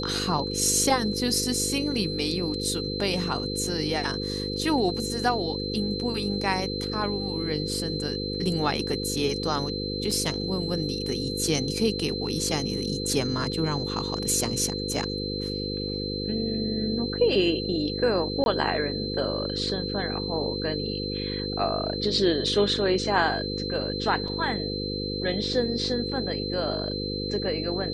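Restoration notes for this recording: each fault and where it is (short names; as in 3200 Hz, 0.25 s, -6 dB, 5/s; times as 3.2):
buzz 50 Hz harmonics 10 -32 dBFS
tone 4100 Hz -33 dBFS
10.11 gap 2.9 ms
18.44–18.46 gap 21 ms
24.28 gap 3.3 ms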